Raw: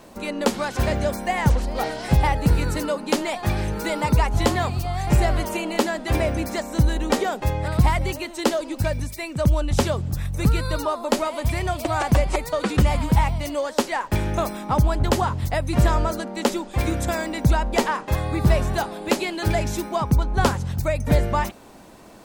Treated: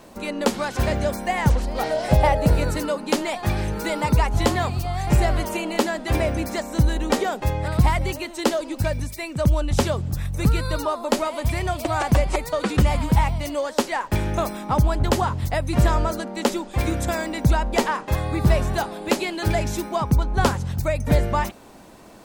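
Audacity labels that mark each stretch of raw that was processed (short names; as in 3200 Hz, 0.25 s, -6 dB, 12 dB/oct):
1.900000	2.710000	bell 610 Hz +13.5 dB 0.4 oct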